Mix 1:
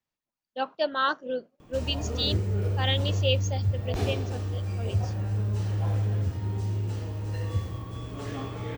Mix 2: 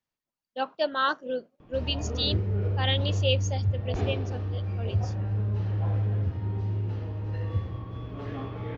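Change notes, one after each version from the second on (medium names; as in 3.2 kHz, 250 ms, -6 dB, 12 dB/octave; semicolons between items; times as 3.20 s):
background: add distance through air 290 m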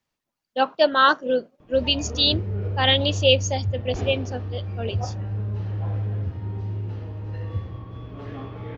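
speech +9.0 dB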